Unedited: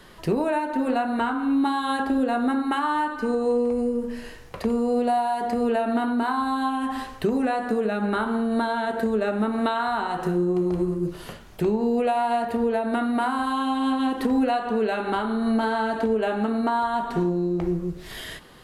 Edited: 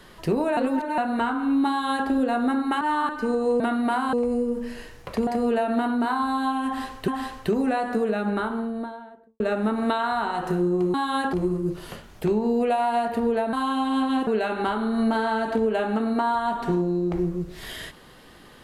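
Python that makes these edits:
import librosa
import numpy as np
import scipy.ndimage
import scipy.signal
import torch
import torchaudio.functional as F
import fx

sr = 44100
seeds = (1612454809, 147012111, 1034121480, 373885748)

y = fx.studio_fade_out(x, sr, start_s=7.86, length_s=1.3)
y = fx.edit(y, sr, fx.reverse_span(start_s=0.57, length_s=0.41),
    fx.duplicate(start_s=1.69, length_s=0.39, to_s=10.7),
    fx.reverse_span(start_s=2.81, length_s=0.28),
    fx.cut(start_s=4.74, length_s=0.71),
    fx.repeat(start_s=6.84, length_s=0.42, count=2),
    fx.move(start_s=12.9, length_s=0.53, to_s=3.6),
    fx.cut(start_s=14.17, length_s=0.58), tone=tone)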